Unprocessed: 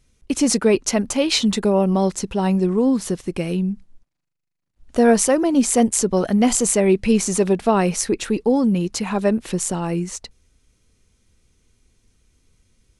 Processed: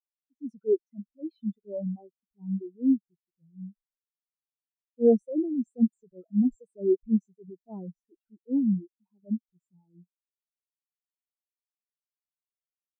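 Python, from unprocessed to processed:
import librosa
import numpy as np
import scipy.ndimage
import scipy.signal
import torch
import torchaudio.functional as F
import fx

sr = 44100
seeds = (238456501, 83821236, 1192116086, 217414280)

y = fx.dereverb_blind(x, sr, rt60_s=1.3)
y = fx.transient(y, sr, attack_db=-9, sustain_db=6)
y = fx.spectral_expand(y, sr, expansion=4.0)
y = F.gain(torch.from_numpy(y), -7.0).numpy()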